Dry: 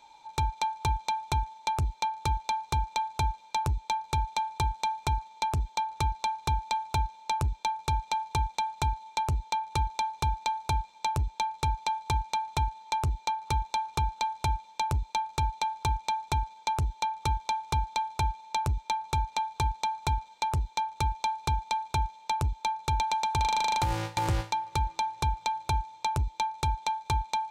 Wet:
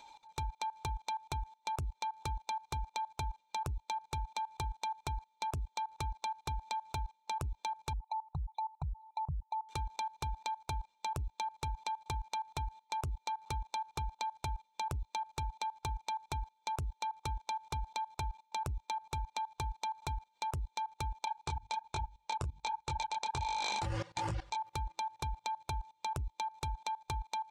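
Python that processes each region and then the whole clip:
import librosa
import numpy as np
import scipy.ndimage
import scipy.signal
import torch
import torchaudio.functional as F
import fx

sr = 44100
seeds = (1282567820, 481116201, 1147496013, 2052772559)

y = fx.chain(x, sr, fx.envelope_sharpen(power=3.0),
    fx.peak_eq(hz=160.0, db=13.0, octaves=0.48), at=(7.93, 9.69))
y = fx.chain(y, sr, fx.lowpass(hz=8800.0, slope=24),
    fx.hum_notches(base_hz=50, count=6),
    fx.detune_double(cents=45), at=(21.25, 24.57))
y = fx.dereverb_blind(y, sr, rt60_s=0.87)
y = fx.level_steps(y, sr, step_db=20)
y = y * librosa.db_to_amplitude(4.5)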